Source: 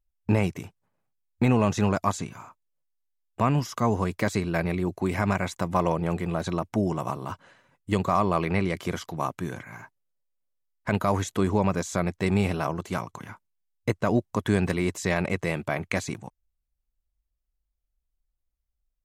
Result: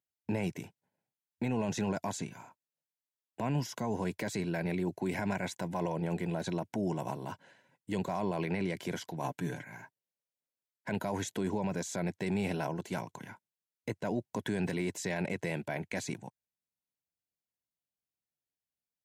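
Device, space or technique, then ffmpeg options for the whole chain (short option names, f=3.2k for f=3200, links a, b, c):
PA system with an anti-feedback notch: -filter_complex "[0:a]highpass=f=120:w=0.5412,highpass=f=120:w=1.3066,asuperstop=centerf=1200:order=4:qfactor=3.7,alimiter=limit=-19.5dB:level=0:latency=1:release=19,asettb=1/sr,asplit=3[a][b][c];[a]atrim=end=9.234[d];[b]atrim=start=9.23:end=9.64,asetpts=PTS-STARTPTS,afade=t=in:d=0.004:c=qsin,afade=t=out:st=0.406:d=0.004:c=qsin,aecho=1:1:6.9:0.57,atrim=end_sample=18081[e];[c]atrim=start=9.636[f];[d][e]acrossfade=d=0.004:c1=hsin:c2=qsin[g];[g][f]acrossfade=d=0.004:c1=qsin:c2=hsin,volume=-4.5dB"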